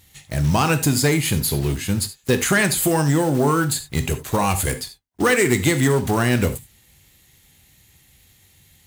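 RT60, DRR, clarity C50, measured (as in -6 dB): not exponential, 9.5 dB, 13.0 dB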